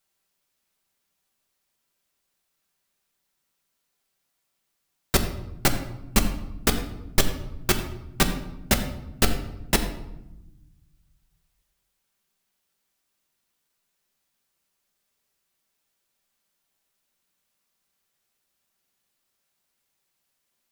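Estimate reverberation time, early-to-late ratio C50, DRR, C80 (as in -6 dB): 0.90 s, 9.5 dB, 4.5 dB, 11.0 dB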